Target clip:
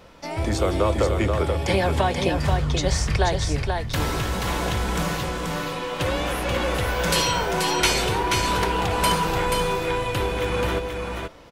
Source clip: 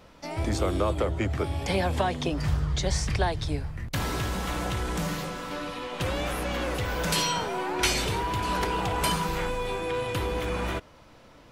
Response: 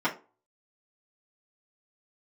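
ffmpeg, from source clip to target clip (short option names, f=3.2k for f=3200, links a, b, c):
-filter_complex "[0:a]aecho=1:1:482:0.596,asplit=2[a][b];[1:a]atrim=start_sample=2205,asetrate=79380,aresample=44100[c];[b][c]afir=irnorm=-1:irlink=0,volume=-18.5dB[d];[a][d]amix=inputs=2:normalize=0,volume=3.5dB"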